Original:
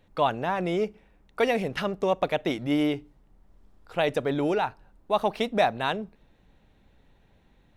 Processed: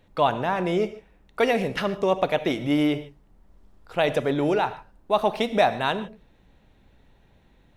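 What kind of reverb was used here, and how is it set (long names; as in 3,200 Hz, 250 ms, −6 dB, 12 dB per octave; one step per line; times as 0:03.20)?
reverb whose tail is shaped and stops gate 170 ms flat, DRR 11.5 dB
level +2.5 dB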